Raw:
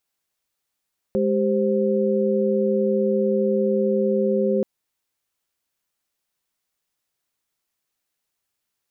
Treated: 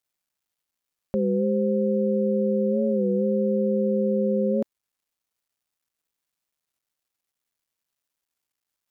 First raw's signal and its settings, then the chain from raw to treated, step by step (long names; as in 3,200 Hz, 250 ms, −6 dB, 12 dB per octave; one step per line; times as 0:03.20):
held notes G#3/G4/C5 sine, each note −22 dBFS 3.48 s
parametric band 390 Hz −5.5 dB 0.64 octaves
bit reduction 12 bits
wow of a warped record 33 1/3 rpm, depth 100 cents